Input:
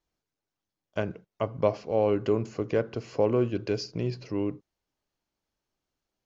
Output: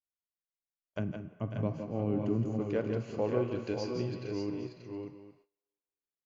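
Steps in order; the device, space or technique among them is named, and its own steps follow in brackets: filtered reverb send (on a send at -8.5 dB: high-pass 590 Hz 12 dB/octave + low-pass 5.3 kHz + reverberation RT60 2.0 s, pre-delay 7 ms); 0.99–2.60 s: on the sum: graphic EQ 125/250/500/1000/2000/4000 Hz +7/+8/-8/-5/-5/-10 dB; multi-tap echo 155/168/546/583/810 ms -14/-7.5/-10.5/-6.5/-17.5 dB; gate -57 dBFS, range -20 dB; band-stop 5.3 kHz, Q 8; trim -7 dB

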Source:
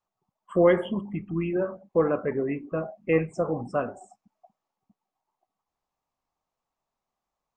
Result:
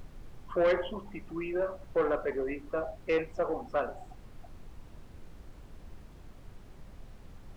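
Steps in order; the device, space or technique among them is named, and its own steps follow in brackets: aircraft cabin announcement (band-pass 440–3400 Hz; saturation -20.5 dBFS, distortion -12 dB; brown noise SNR 11 dB)

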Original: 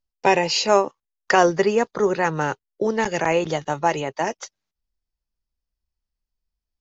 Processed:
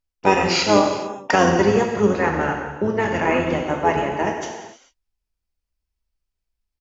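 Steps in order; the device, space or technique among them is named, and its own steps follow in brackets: 2.19–4.35 s: resonant high shelf 3.2 kHz -7 dB, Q 1.5; gated-style reverb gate 470 ms falling, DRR 1 dB; octave pedal (harmony voices -12 st -4 dB); trim -2 dB

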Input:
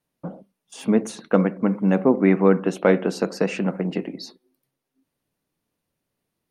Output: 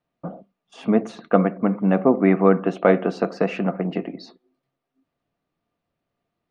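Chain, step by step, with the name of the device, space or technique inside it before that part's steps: inside a cardboard box (low-pass 3.5 kHz 12 dB/octave; small resonant body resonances 690/1200 Hz, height 10 dB)

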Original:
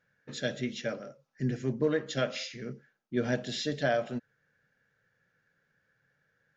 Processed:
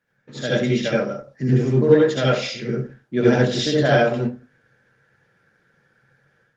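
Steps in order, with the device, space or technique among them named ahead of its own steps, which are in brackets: far-field microphone of a smart speaker (reverberation RT60 0.30 s, pre-delay 65 ms, DRR -5 dB; high-pass 82 Hz 24 dB/octave; level rider gain up to 8.5 dB; Opus 20 kbps 48 kHz)

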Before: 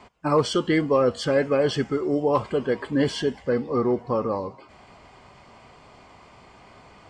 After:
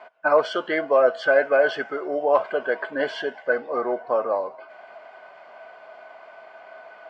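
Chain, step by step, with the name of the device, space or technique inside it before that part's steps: tin-can telephone (band-pass 570–2800 Hz; small resonant body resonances 650/1500 Hz, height 17 dB, ringing for 50 ms); trim +1.5 dB

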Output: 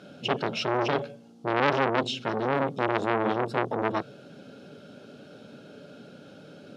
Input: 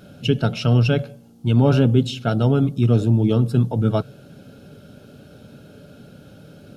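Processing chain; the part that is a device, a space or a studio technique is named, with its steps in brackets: public-address speaker with an overloaded transformer (transformer saturation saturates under 1.7 kHz; band-pass 230–6200 Hz)

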